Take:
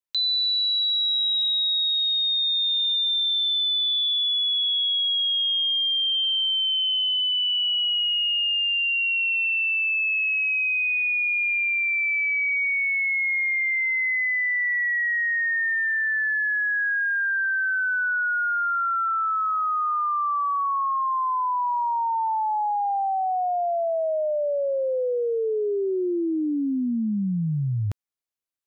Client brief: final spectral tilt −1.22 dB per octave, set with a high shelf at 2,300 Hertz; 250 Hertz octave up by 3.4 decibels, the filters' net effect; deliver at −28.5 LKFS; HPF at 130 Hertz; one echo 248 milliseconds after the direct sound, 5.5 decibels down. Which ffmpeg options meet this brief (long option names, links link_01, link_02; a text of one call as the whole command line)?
ffmpeg -i in.wav -af "highpass=130,equalizer=frequency=250:width_type=o:gain=5,highshelf=frequency=2300:gain=-7.5,aecho=1:1:248:0.531,volume=-5dB" out.wav